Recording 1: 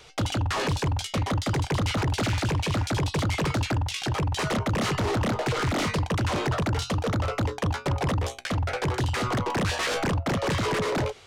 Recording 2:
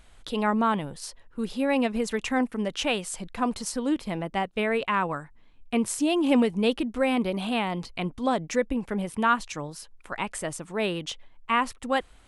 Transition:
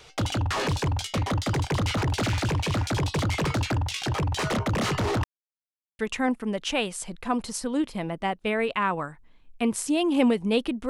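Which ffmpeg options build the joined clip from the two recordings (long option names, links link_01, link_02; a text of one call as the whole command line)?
ffmpeg -i cue0.wav -i cue1.wav -filter_complex "[0:a]apad=whole_dur=10.89,atrim=end=10.89,asplit=2[link_01][link_02];[link_01]atrim=end=5.24,asetpts=PTS-STARTPTS,afade=type=out:start_time=5.236:duration=0.004:curve=hsin[link_03];[link_02]atrim=start=5.24:end=5.99,asetpts=PTS-STARTPTS,volume=0[link_04];[1:a]atrim=start=2.11:end=7.01,asetpts=PTS-STARTPTS,afade=type=in:duration=0.004:curve=hsin[link_05];[link_03][link_04][link_05]concat=n=3:v=0:a=1" out.wav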